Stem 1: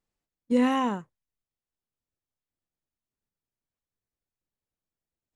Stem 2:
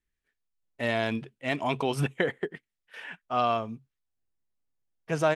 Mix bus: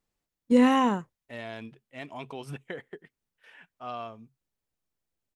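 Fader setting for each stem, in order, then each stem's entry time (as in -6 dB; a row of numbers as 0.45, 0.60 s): +3.0, -11.5 dB; 0.00, 0.50 s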